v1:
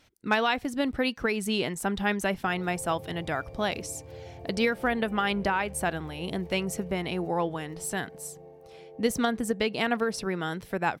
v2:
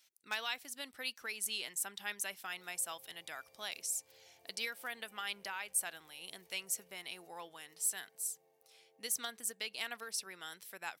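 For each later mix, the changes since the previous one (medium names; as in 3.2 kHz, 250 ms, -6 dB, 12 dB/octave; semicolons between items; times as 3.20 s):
master: add differentiator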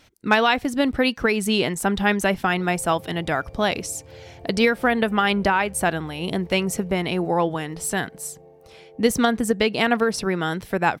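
speech +7.0 dB; master: remove differentiator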